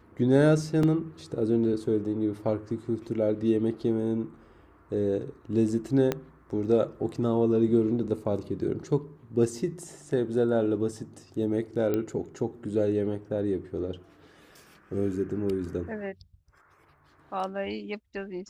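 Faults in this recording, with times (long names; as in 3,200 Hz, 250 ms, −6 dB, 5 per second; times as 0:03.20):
0:00.83: drop-out 3.5 ms
0:06.12: click −13 dBFS
0:11.94: click −16 dBFS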